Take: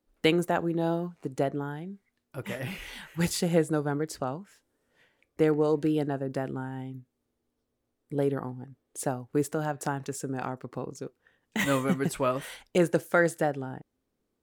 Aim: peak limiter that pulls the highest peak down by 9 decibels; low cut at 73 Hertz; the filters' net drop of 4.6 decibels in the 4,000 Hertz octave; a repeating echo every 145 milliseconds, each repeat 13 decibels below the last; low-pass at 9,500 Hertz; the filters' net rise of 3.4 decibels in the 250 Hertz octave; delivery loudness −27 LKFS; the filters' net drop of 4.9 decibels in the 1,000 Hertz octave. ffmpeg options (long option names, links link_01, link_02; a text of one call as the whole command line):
ffmpeg -i in.wav -af "highpass=73,lowpass=9500,equalizer=frequency=250:width_type=o:gain=5.5,equalizer=frequency=1000:width_type=o:gain=-7.5,equalizer=frequency=4000:width_type=o:gain=-6,alimiter=limit=-18.5dB:level=0:latency=1,aecho=1:1:145|290|435:0.224|0.0493|0.0108,volume=4dB" out.wav